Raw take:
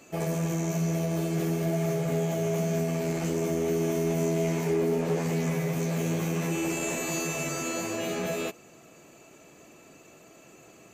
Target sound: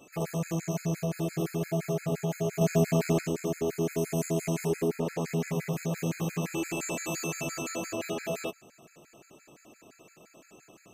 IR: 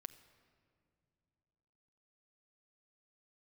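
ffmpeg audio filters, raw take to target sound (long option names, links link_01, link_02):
-filter_complex "[0:a]asettb=1/sr,asplit=3[link_01][link_02][link_03];[link_01]atrim=end=2.614[link_04];[link_02]atrim=start=2.61:end=3.21,asetpts=PTS-STARTPTS,afade=type=in:duration=0.004:curve=qsin,afade=type=out:start_time=0.596:duration=0.004:curve=qsin,acontrast=45[link_05];[link_03]atrim=start=3.206[link_06];[link_04][link_05]acrossfade=duration=0.004:curve1=hsin:curve2=qsin[link_07];[link_07][link_06]acrossfade=duration=0.004:curve1=qsin:curve2=hsin,asettb=1/sr,asplit=3[link_08][link_09][link_10];[link_08]atrim=end=3.984[link_11];[link_09]atrim=start=3.98:end=4.88,asetpts=PTS-STARTPTS,afade=type=in:duration=0.004:curve=qsin,afade=type=out:start_time=0.896:duration=0.004:curve=qsin,equalizer=frequency=10000:width_type=o:width=1.1:gain=8[link_12];[link_10]atrim=start=4.876[link_13];[link_11][link_12]acrossfade=duration=0.004:curve1=hsin:curve2=qsin[link_14];[link_14][link_13]acrossfade=duration=0.004:curve1=qsin:curve2=hsin,afftfilt=real='re*gt(sin(2*PI*5.8*pts/sr)*(1-2*mod(floor(b*sr/1024/1300),2)),0)':imag='im*gt(sin(2*PI*5.8*pts/sr)*(1-2*mod(floor(b*sr/1024/1300),2)),0)':win_size=1024:overlap=0.75"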